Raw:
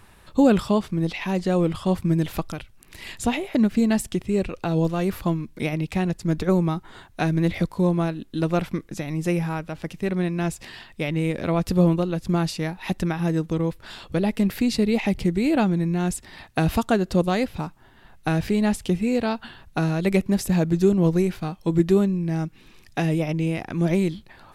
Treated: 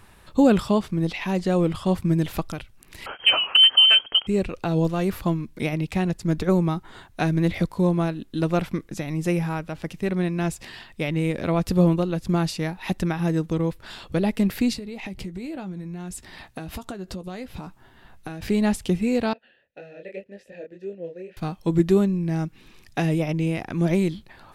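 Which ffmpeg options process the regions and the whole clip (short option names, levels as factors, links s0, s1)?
-filter_complex "[0:a]asettb=1/sr,asplit=3[s0][s1][s2];[s0]atrim=end=3.064[s3];[s1]atrim=start=3.06:end=4.27,asetpts=PTS-STARTPTS,afade=t=in:d=0.004:c=qsin,afade=t=out:st=1.206:d=0.004:c=qsin,highpass=86,lowpass=f=2800:t=q:w=0.5098,lowpass=f=2800:t=q:w=0.6013,lowpass=f=2800:t=q:w=0.9,lowpass=f=2800:t=q:w=2.563,afreqshift=-3300,acontrast=28[s4];[s2]atrim=start=4.266[s5];[s3][s4]acrossfade=d=0.004:c1=hsin:c2=qsin[s6];[s6][s5]acrossfade=d=0.004:c1=qsin:c2=hsin,asettb=1/sr,asplit=3[s7][s8][s9];[s7]atrim=end=14.734[s10];[s8]atrim=start=14.73:end=18.42,asetpts=PTS-STARTPTS,afade=t=in:d=0.004:c=qsin,afade=t=out:st=3.686:d=0.004:c=qsin,acompressor=threshold=0.0316:ratio=12:attack=3.2:release=140:knee=1:detection=peak,asplit=2[s11][s12];[s12]adelay=16,volume=0.251[s13];[s11][s13]amix=inputs=2:normalize=0,atrim=end_sample=162729[s14];[s9]atrim=start=18.416[s15];[s10][s14]acrossfade=d=0.004:c1=hsin:c2=qsin[s16];[s16][s15]acrossfade=d=0.004:c1=qsin:c2=hsin,asettb=1/sr,asplit=3[s17][s18][s19];[s17]atrim=end=19.334[s20];[s18]atrim=start=19.33:end=21.37,asetpts=PTS-STARTPTS,afade=t=in:d=0.004:c=qsin,afade=t=out:st=2.036:d=0.004:c=qsin,flanger=delay=20:depth=7.5:speed=1.9,asplit=3[s21][s22][s23];[s21]bandpass=f=530:t=q:w=8,volume=1[s24];[s22]bandpass=f=1840:t=q:w=8,volume=0.501[s25];[s23]bandpass=f=2480:t=q:w=8,volume=0.355[s26];[s24][s25][s26]amix=inputs=3:normalize=0[s27];[s19]atrim=start=21.366[s28];[s20][s27]acrossfade=d=0.004:c1=hsin:c2=qsin[s29];[s29][s28]acrossfade=d=0.004:c1=qsin:c2=hsin"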